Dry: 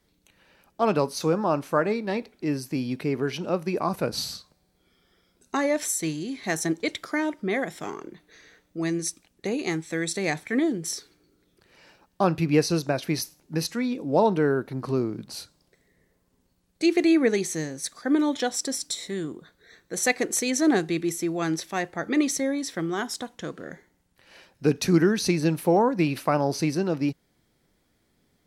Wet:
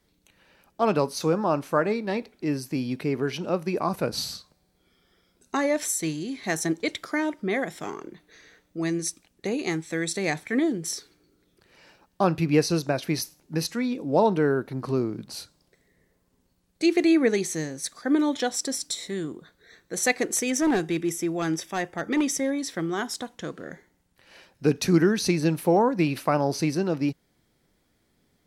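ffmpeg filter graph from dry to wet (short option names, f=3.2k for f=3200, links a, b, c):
-filter_complex "[0:a]asettb=1/sr,asplit=3[a][b][c];[a]atrim=end=20.384[d];[b]atrim=start=20.38:end=22.59,asetpts=PTS-STARTPTS,afade=t=in:d=0.004:c=qsin,afade=t=out:st=2.206:d=0.004:c=qsin,asuperstop=centerf=4200:order=12:qfactor=7.2,asoftclip=type=hard:threshold=-18.5dB[e];[c]atrim=start=22.586[f];[d][e]acrossfade=d=0.004:c1=hsin:c2=qsin[g];[g][f]acrossfade=d=0.004:c1=qsin:c2=hsin"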